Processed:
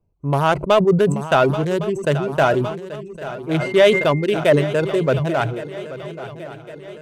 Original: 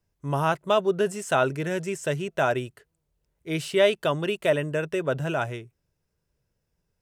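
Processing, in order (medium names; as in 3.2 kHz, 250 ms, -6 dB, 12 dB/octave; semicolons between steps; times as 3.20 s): local Wiener filter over 25 samples; reverb removal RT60 0.63 s; in parallel at -6 dB: hard clipper -20 dBFS, distortion -11 dB; 3.59–4.24 s: on the sum: whistle 2.1 kHz -41 dBFS; on a send: shuffle delay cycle 1110 ms, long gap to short 3:1, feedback 52%, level -15 dB; on the sum: decay stretcher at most 68 dB/s; trim +5 dB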